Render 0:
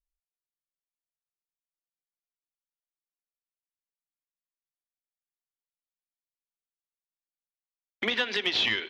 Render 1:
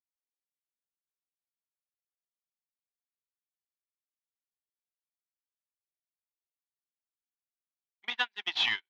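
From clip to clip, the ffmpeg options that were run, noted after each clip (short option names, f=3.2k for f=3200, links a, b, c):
-af "agate=range=-48dB:threshold=-25dB:ratio=16:detection=peak,lowshelf=f=640:t=q:w=3:g=-8.5"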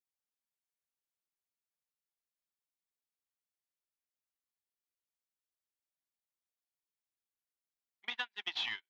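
-af "acompressor=threshold=-31dB:ratio=6,volume=-3dB"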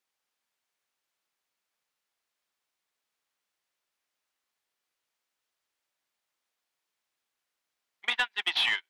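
-filter_complex "[0:a]asplit=2[a][b];[b]highpass=f=720:p=1,volume=13dB,asoftclip=type=tanh:threshold=-22.5dB[c];[a][c]amix=inputs=2:normalize=0,lowpass=f=3.2k:p=1,volume=-6dB,volume=7.5dB"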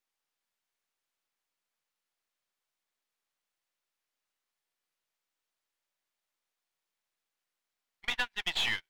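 -af "aeval=exprs='if(lt(val(0),0),0.447*val(0),val(0))':c=same,volume=-1.5dB"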